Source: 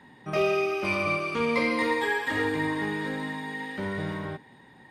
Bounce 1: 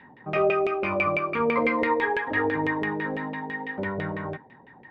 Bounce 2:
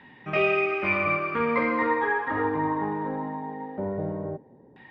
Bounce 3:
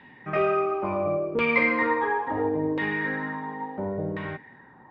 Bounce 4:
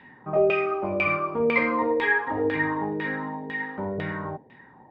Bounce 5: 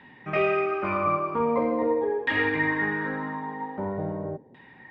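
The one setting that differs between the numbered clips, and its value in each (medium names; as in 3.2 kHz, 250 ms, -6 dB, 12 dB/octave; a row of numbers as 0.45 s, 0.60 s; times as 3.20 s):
LFO low-pass, rate: 6 Hz, 0.21 Hz, 0.72 Hz, 2 Hz, 0.44 Hz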